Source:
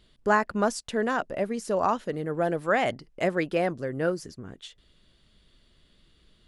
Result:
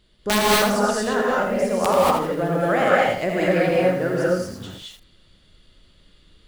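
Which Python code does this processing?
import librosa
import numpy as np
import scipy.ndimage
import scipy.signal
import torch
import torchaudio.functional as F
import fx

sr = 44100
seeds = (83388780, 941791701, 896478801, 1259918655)

y = (np.mod(10.0 ** (12.5 / 20.0) * x + 1.0, 2.0) - 1.0) / 10.0 ** (12.5 / 20.0)
y = fx.rev_gated(y, sr, seeds[0], gate_ms=260, shape='rising', drr_db=-5.5)
y = fx.echo_crushed(y, sr, ms=82, feedback_pct=35, bits=7, wet_db=-7)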